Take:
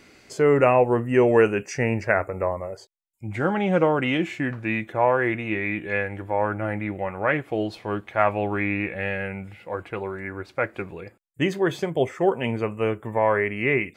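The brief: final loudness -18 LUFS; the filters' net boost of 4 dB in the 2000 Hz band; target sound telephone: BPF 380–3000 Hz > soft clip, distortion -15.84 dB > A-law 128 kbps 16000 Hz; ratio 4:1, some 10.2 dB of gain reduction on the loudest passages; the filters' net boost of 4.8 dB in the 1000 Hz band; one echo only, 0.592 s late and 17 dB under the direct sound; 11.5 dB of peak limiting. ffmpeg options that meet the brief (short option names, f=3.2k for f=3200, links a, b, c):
-af "equalizer=f=1k:t=o:g=5.5,equalizer=f=2k:t=o:g=4,acompressor=threshold=-23dB:ratio=4,alimiter=limit=-20dB:level=0:latency=1,highpass=380,lowpass=3k,aecho=1:1:592:0.141,asoftclip=threshold=-25dB,volume=16.5dB" -ar 16000 -c:a pcm_alaw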